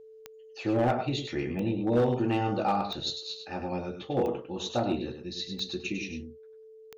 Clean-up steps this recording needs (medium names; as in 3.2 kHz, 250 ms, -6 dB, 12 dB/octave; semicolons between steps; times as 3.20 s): clip repair -19 dBFS; de-click; band-stop 440 Hz, Q 30; inverse comb 101 ms -7.5 dB